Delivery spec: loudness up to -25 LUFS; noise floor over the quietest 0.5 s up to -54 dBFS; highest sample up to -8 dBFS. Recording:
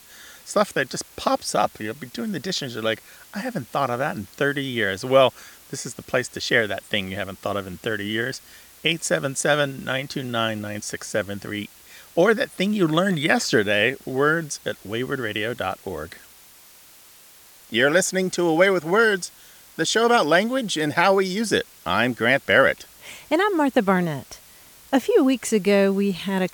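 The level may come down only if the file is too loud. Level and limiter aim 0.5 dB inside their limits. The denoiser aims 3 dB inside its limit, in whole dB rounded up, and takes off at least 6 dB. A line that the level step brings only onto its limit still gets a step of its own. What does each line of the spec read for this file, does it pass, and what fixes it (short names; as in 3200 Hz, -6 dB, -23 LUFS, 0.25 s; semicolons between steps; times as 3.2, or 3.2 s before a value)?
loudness -22.0 LUFS: fail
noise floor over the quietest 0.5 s -49 dBFS: fail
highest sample -4.0 dBFS: fail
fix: denoiser 6 dB, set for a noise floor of -49 dBFS; gain -3.5 dB; limiter -8.5 dBFS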